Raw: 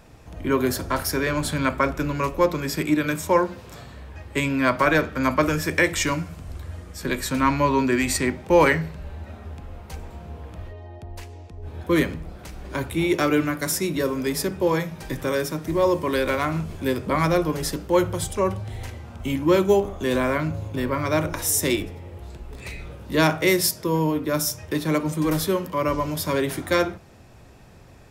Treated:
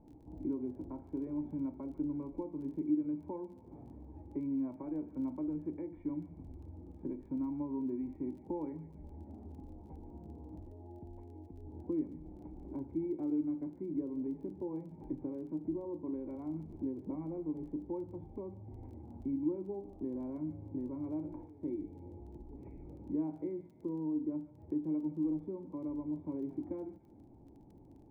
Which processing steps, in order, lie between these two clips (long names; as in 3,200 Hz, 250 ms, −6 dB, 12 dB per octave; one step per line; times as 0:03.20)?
downward compressor 3 to 1, threshold −34 dBFS, peak gain reduction 16.5 dB
formant resonators in series u
surface crackle 14 per second −59 dBFS
on a send: delay with a high-pass on its return 146 ms, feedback 53%, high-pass 1,600 Hz, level −10 dB
on the sum: level +2.5 dB